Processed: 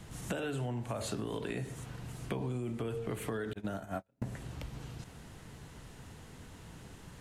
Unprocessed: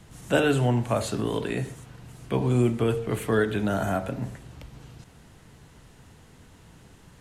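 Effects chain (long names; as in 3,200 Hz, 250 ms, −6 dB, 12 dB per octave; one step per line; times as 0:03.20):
0:03.53–0:04.22: noise gate −23 dBFS, range −45 dB
brickwall limiter −17.5 dBFS, peak gain reduction 9.5 dB
downward compressor 12 to 1, threshold −34 dBFS, peak gain reduction 13 dB
level +1 dB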